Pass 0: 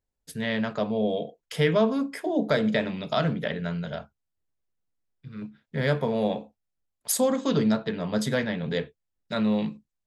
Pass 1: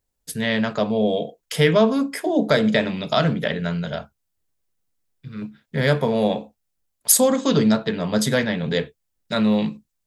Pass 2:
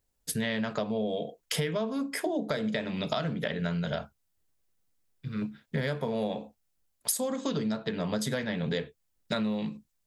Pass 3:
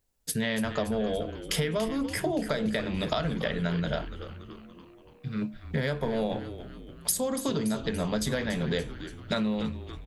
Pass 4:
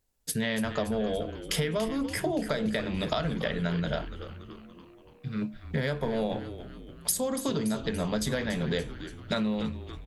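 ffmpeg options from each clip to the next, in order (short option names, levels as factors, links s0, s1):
-af "highshelf=f=5300:g=7.5,volume=1.88"
-af "acompressor=threshold=0.0447:ratio=12"
-filter_complex "[0:a]asplit=8[s0][s1][s2][s3][s4][s5][s6][s7];[s1]adelay=286,afreqshift=-130,volume=0.266[s8];[s2]adelay=572,afreqshift=-260,volume=0.155[s9];[s3]adelay=858,afreqshift=-390,volume=0.0891[s10];[s4]adelay=1144,afreqshift=-520,volume=0.0519[s11];[s5]adelay=1430,afreqshift=-650,volume=0.0302[s12];[s6]adelay=1716,afreqshift=-780,volume=0.0174[s13];[s7]adelay=2002,afreqshift=-910,volume=0.0101[s14];[s0][s8][s9][s10][s11][s12][s13][s14]amix=inputs=8:normalize=0,volume=1.19"
-ar 44100 -c:a libmp3lame -b:a 160k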